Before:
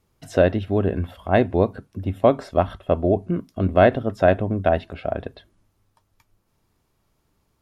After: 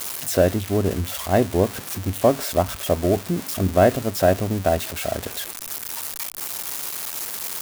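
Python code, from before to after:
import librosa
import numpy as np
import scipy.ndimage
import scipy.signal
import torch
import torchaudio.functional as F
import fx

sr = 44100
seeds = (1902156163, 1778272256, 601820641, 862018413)

y = x + 0.5 * 10.0 ** (-10.0 / 20.0) * np.diff(np.sign(x), prepend=np.sign(x[:1]))
y = fx.high_shelf(y, sr, hz=2000.0, db=-10.0)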